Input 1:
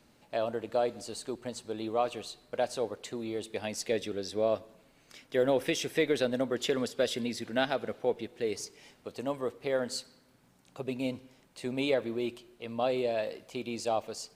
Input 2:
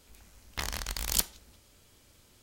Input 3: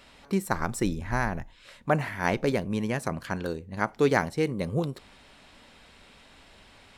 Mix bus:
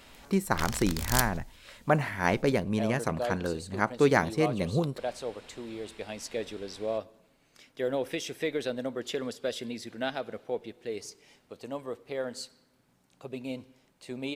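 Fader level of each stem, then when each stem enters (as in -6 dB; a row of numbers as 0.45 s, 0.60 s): -3.5 dB, -1.5 dB, 0.0 dB; 2.45 s, 0.00 s, 0.00 s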